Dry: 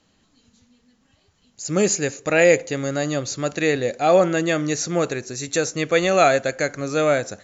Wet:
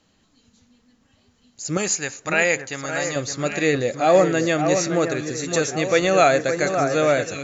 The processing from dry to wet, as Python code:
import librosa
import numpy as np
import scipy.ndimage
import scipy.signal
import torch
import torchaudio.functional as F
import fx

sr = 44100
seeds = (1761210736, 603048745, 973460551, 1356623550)

y = fx.low_shelf_res(x, sr, hz=670.0, db=-7.5, q=1.5, at=(1.77, 3.16))
y = fx.echo_alternate(y, sr, ms=567, hz=1900.0, feedback_pct=64, wet_db=-6.5)